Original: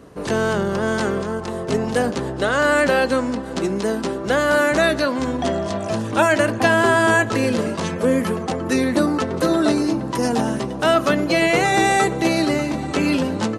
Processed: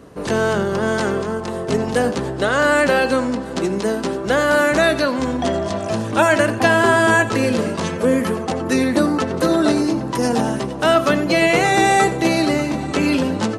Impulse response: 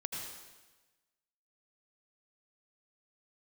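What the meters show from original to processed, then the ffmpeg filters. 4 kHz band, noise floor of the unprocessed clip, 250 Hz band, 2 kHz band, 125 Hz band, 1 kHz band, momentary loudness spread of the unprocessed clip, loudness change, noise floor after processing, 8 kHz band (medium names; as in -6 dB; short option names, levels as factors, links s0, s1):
+1.5 dB, -28 dBFS, +1.5 dB, +1.5 dB, +1.5 dB, +2.0 dB, 8 LU, +1.5 dB, -27 dBFS, +1.5 dB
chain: -filter_complex "[0:a]asplit=2[s0][s1];[1:a]atrim=start_sample=2205,atrim=end_sample=4410[s2];[s1][s2]afir=irnorm=-1:irlink=0,volume=0.75[s3];[s0][s3]amix=inputs=2:normalize=0,volume=0.75"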